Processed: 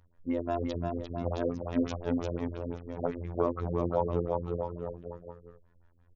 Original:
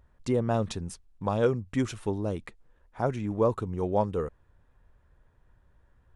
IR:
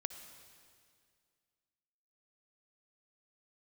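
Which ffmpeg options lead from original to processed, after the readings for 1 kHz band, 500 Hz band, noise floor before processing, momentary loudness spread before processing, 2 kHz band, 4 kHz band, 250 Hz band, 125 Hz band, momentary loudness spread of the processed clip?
-3.0 dB, -3.0 dB, -64 dBFS, 9 LU, -6.0 dB, -5.0 dB, -1.0 dB, -3.5 dB, 10 LU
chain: -af "aecho=1:1:350|647.5|900.4|1115|1298:0.631|0.398|0.251|0.158|0.1,afftfilt=real='hypot(re,im)*cos(PI*b)':imag='0':win_size=2048:overlap=0.75,afftfilt=real='re*lt(b*sr/1024,520*pow(7300/520,0.5+0.5*sin(2*PI*5.8*pts/sr)))':imag='im*lt(b*sr/1024,520*pow(7300/520,0.5+0.5*sin(2*PI*5.8*pts/sr)))':win_size=1024:overlap=0.75"

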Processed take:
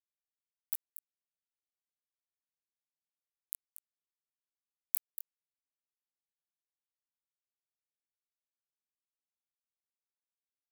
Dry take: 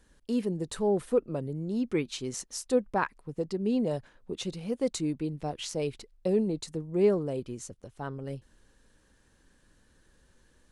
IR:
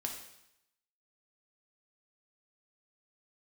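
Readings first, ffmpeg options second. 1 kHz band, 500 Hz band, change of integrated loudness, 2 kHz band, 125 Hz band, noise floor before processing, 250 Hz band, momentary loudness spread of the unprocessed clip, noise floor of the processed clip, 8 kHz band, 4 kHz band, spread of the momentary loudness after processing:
under -40 dB, under -40 dB, -8.0 dB, under -30 dB, under -40 dB, -65 dBFS, under -40 dB, 13 LU, under -85 dBFS, -10.5 dB, under -30 dB, 19 LU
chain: -filter_complex "[0:a]bandreject=f=225.4:t=h:w=4,bandreject=f=450.8:t=h:w=4,bandreject=f=676.2:t=h:w=4,bandreject=f=901.6:t=h:w=4,bandreject=f=1.127k:t=h:w=4,bandreject=f=1.3524k:t=h:w=4,bandreject=f=1.5778k:t=h:w=4,bandreject=f=1.8032k:t=h:w=4,bandreject=f=2.0286k:t=h:w=4,bandreject=f=2.254k:t=h:w=4,bandreject=f=2.4794k:t=h:w=4,bandreject=f=2.7048k:t=h:w=4,bandreject=f=2.9302k:t=h:w=4,bandreject=f=3.1556k:t=h:w=4,bandreject=f=3.381k:t=h:w=4,bandreject=f=3.6064k:t=h:w=4,bandreject=f=3.8318k:t=h:w=4,bandreject=f=4.0572k:t=h:w=4,afftfilt=real='re*lt(hypot(re,im),0.141)':imag='im*lt(hypot(re,im),0.141)':win_size=1024:overlap=0.75,bass=f=250:g=-3,treble=f=4k:g=-2,afftfilt=real='hypot(re,im)*cos(2*PI*random(0))':imag='hypot(re,im)*sin(2*PI*random(1))':win_size=512:overlap=0.75,acompressor=threshold=-46dB:ratio=5,equalizer=f=125:t=o:w=1:g=9,equalizer=f=250:t=o:w=1:g=-4,equalizer=f=500:t=o:w=1:g=8,equalizer=f=1k:t=o:w=1:g=5,equalizer=f=2k:t=o:w=1:g=8,equalizer=f=4k:t=o:w=1:g=-12,equalizer=f=8k:t=o:w=1:g=5,aeval=exprs='0.0316*(cos(1*acos(clip(val(0)/0.0316,-1,1)))-cos(1*PI/2))+0.000224*(cos(2*acos(clip(val(0)/0.0316,-1,1)))-cos(2*PI/2))':c=same,acrossover=split=270|3000[a][b][c];[b]acompressor=threshold=-55dB:ratio=6[d];[a][d][c]amix=inputs=3:normalize=0,acrusher=bits=5:mix=0:aa=0.000001,flanger=delay=17:depth=6.1:speed=2.3,aexciter=amount=10.2:drive=9.2:freq=8.3k,asplit=2[e][f];[f]aecho=0:1:235:0.237[g];[e][g]amix=inputs=2:normalize=0,volume=3.5dB"

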